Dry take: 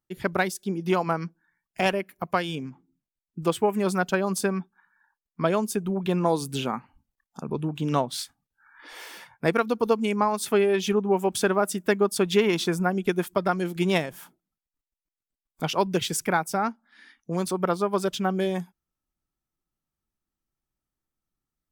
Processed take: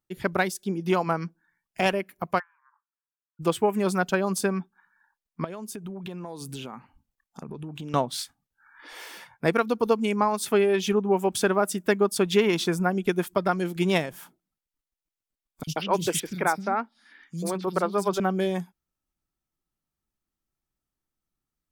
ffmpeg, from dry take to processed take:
-filter_complex "[0:a]asplit=3[a][b][c];[a]afade=t=out:st=2.38:d=0.02[d];[b]asuperpass=centerf=1300:order=12:qfactor=1.5,afade=t=in:st=2.38:d=0.02,afade=t=out:st=3.39:d=0.02[e];[c]afade=t=in:st=3.39:d=0.02[f];[d][e][f]amix=inputs=3:normalize=0,asettb=1/sr,asplit=3[g][h][i];[g]atrim=end=5.444[j];[h]atrim=start=5.44:end=7.94,asetpts=PTS-STARTPTS,afade=t=in:d=0.004:c=qsin,afade=t=out:st=2.496:d=0.004:c=qsin,acompressor=threshold=-33dB:ratio=8:attack=3.2:release=140:knee=1:detection=peak[k];[i]atrim=start=7.936[l];[j][k]acrossfade=d=0.004:c1=hsin:c2=qsin[m];[m][l]acrossfade=d=0.004:c1=qsin:c2=hsin,asettb=1/sr,asplit=3[n][o][p];[n]atrim=end=15.634[q];[o]atrim=start=15.63:end=18.2,asetpts=PTS-STARTPTS,afade=t=in:d=0.004:c=qsin,afade=t=out:st=2.566:d=0.004:c=qsin,acrossover=split=230|3800[r][s][t];[r]adelay=40[u];[s]adelay=130[v];[u][v][t]amix=inputs=3:normalize=0,atrim=end_sample=113337[w];[p]atrim=start=18.196[x];[q][w]acrossfade=d=0.004:c1=hsin:c2=qsin[y];[y][x]acrossfade=d=0.004:c1=qsin:c2=hsin"

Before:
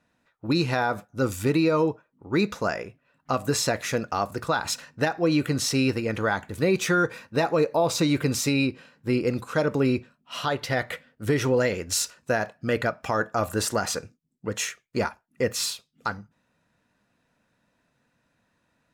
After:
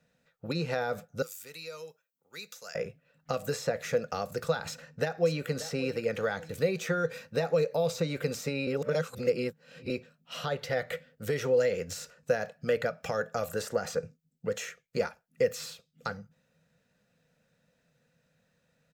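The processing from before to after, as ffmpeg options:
-filter_complex "[0:a]asettb=1/sr,asplit=3[a][b][c];[a]atrim=end=1.224[d];[b]atrim=start=1.22:end=2.75,asetpts=PTS-STARTPTS,afade=t=in:d=0.004:c=qsin,afade=t=out:st=1.526:d=0.004:c=qsin,aderivative[e];[c]atrim=start=2.746[f];[d][e]acrossfade=d=0.004:c1=hsin:c2=qsin[g];[g][f]acrossfade=d=0.004:c1=qsin:c2=hsin,asplit=2[h][i];[i]afade=t=in:st=4.66:d=0.01,afade=t=out:st=5.47:d=0.01,aecho=0:1:580|1160|1740:0.141254|0.0494388|0.0173036[j];[h][j]amix=inputs=2:normalize=0,asplit=3[k][l][m];[k]atrim=end=8.672[n];[l]atrim=start=8.668:end=9.902,asetpts=PTS-STARTPTS,areverse[o];[m]atrim=start=9.898[p];[n][o]acrossfade=d=0.004:c1=hsin:c2=hsin[q];[q][p]acrossfade=d=0.004:c1=hsin:c2=hsin,highshelf=f=4.8k:g=7.5,acrossover=split=270|2000[r][s][t];[r]acompressor=threshold=-40dB:ratio=4[u];[s]acompressor=threshold=-26dB:ratio=4[v];[t]acompressor=threshold=-38dB:ratio=4[w];[u][v][w]amix=inputs=3:normalize=0,equalizer=f=160:t=o:w=0.33:g=11,equalizer=f=315:t=o:w=0.33:g=-11,equalizer=f=500:t=o:w=0.33:g=10,equalizer=f=1k:t=o:w=0.33:g=-10,equalizer=f=10k:t=o:w=0.33:g=-9,volume=-3.5dB"

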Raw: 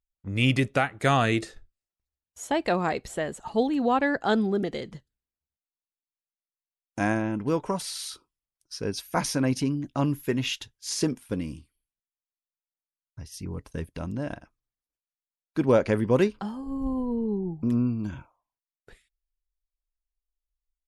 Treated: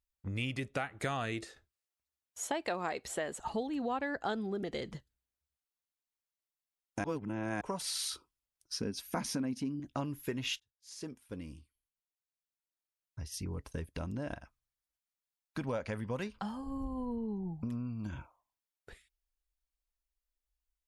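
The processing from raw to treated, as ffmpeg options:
-filter_complex "[0:a]asettb=1/sr,asplit=3[a][b][c];[a]atrim=end=1.444[d];[b]atrim=start=1.44:end=3.39,asetpts=PTS-STARTPTS,afade=t=in:d=0.004:c=qsin,afade=t=out:st=1.946:d=0.004:c=qsin,highpass=f=290:p=1[e];[c]atrim=start=3.386[f];[d][e]acrossfade=d=0.004:c1=hsin:c2=qsin[g];[g][f]acrossfade=d=0.004:c1=qsin:c2=hsin,asettb=1/sr,asplit=3[h][i][j];[h]atrim=end=8.744[k];[i]atrim=start=8.74:end=9.8,asetpts=PTS-STARTPTS,afade=t=in:d=0.004:c=qsin,afade=t=out:st=1.056:d=0.004:c=qsin,equalizer=f=230:w=2.8:g=14[l];[j]atrim=start=9.796[m];[k][l]acrossfade=d=0.004:c1=hsin:c2=qsin[n];[n][m]acrossfade=d=0.004:c1=qsin:c2=hsin,asettb=1/sr,asplit=3[o][p][q];[o]atrim=end=14.354[r];[p]atrim=start=14.35:end=18.06,asetpts=PTS-STARTPTS,afade=t=in:d=0.004:c=qsin,afade=t=out:st=3.706:d=0.004:c=qsin,equalizer=f=360:t=o:w=0.69:g=-10[s];[q]atrim=start=18.056[t];[r][s]acrossfade=d=0.004:c1=hsin:c2=qsin[u];[u][t]acrossfade=d=0.004:c1=qsin:c2=hsin,asplit=4[v][w][x][y];[v]atrim=end=7.042[z];[w]atrim=start=7.038:end=7.612,asetpts=PTS-STARTPTS,areverse[aa];[x]atrim=start=7.608:end=10.6,asetpts=PTS-STARTPTS,afade=t=out:st=2.988:d=0.004:c=hsin[ab];[y]atrim=start=10.6,asetpts=PTS-STARTPTS,afade=t=in:d=2.8[ac];[z][aa]acrossfade=d=0.004:c1=hsin:c2=hsin[ad];[ab][ac]concat=n=2:v=0:a=1[ae];[ad][ae]acrossfade=d=0.004:c1=hsin:c2=hsin,equalizer=f=63:t=o:w=1.2:g=9.5,acompressor=threshold=-31dB:ratio=6,lowshelf=f=250:g=-6"

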